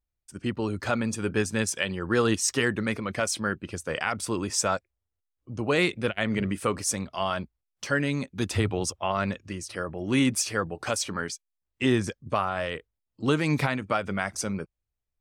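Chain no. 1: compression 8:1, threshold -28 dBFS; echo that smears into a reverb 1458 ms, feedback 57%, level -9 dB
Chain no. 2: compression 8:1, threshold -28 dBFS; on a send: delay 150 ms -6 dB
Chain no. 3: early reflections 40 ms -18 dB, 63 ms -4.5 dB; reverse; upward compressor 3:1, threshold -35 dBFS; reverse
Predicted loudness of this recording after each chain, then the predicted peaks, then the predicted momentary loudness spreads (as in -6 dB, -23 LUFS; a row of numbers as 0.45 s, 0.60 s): -33.5 LUFS, -33.0 LUFS, -26.5 LUFS; -14.5 dBFS, -15.0 dBFS, -7.5 dBFS; 7 LU, 6 LU, 10 LU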